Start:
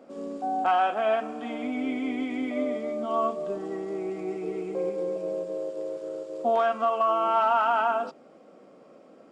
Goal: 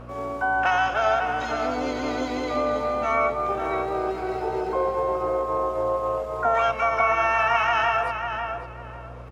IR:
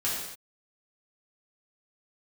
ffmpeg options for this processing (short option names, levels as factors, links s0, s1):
-filter_complex "[0:a]highpass=450,aemphasis=mode=reproduction:type=50kf,bandreject=f=2300:w=6.2,acompressor=threshold=0.0316:ratio=3,aeval=exprs='val(0)+0.00282*(sin(2*PI*60*n/s)+sin(2*PI*2*60*n/s)/2+sin(2*PI*3*60*n/s)/3+sin(2*PI*4*60*n/s)/4+sin(2*PI*5*60*n/s)/5)':c=same,asplit=4[s0][s1][s2][s3];[s1]asetrate=52444,aresample=44100,atempo=0.840896,volume=0.178[s4];[s2]asetrate=58866,aresample=44100,atempo=0.749154,volume=0.178[s5];[s3]asetrate=88200,aresample=44100,atempo=0.5,volume=0.708[s6];[s0][s4][s5][s6]amix=inputs=4:normalize=0,asplit=2[s7][s8];[s8]adelay=548,lowpass=f=2800:p=1,volume=0.501,asplit=2[s9][s10];[s10]adelay=548,lowpass=f=2800:p=1,volume=0.24,asplit=2[s11][s12];[s12]adelay=548,lowpass=f=2800:p=1,volume=0.24[s13];[s7][s9][s11][s13]amix=inputs=4:normalize=0,volume=2.37" -ar 48000 -c:a libmp3lame -b:a 80k